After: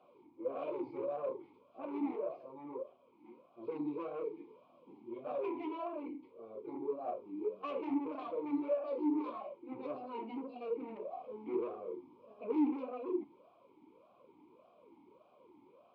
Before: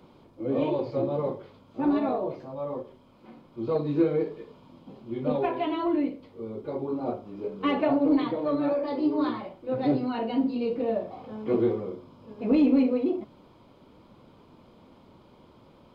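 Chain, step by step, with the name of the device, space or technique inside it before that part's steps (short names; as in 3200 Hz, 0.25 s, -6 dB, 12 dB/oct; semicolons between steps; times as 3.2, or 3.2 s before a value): talk box (tube stage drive 27 dB, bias 0.2; vowel sweep a-u 1.7 Hz); gain +2.5 dB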